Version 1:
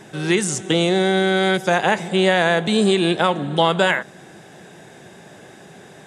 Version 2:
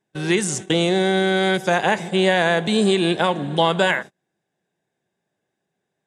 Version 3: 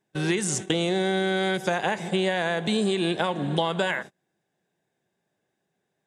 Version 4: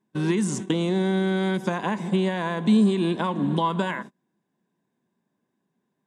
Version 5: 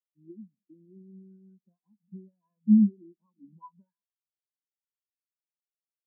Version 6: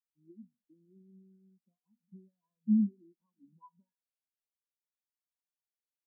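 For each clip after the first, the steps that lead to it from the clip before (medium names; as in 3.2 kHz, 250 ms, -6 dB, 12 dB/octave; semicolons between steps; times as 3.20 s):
gate -29 dBFS, range -34 dB; band-stop 1.3 kHz, Q 18; trim -1 dB
compression, threshold -21 dBFS, peak gain reduction 8.5 dB
small resonant body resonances 230/1000 Hz, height 16 dB, ringing for 30 ms; trim -6 dB
spectral contrast expander 4:1
feedback comb 240 Hz, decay 0.23 s, harmonics all, mix 80%; trim +2.5 dB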